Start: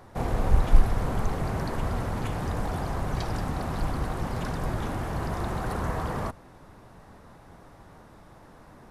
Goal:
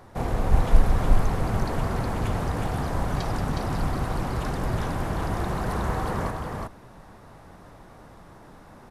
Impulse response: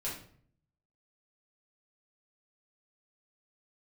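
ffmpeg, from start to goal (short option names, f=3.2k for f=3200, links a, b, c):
-af "aecho=1:1:366:0.708,volume=1dB"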